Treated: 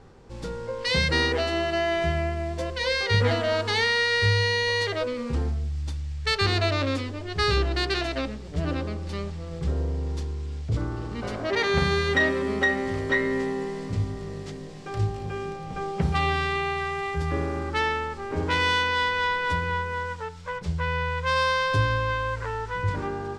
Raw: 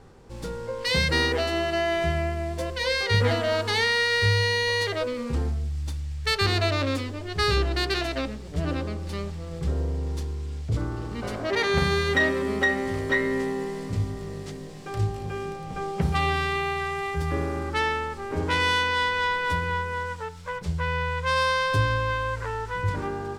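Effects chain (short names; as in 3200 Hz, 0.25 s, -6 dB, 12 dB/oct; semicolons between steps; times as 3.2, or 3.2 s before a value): LPF 7600 Hz 12 dB/oct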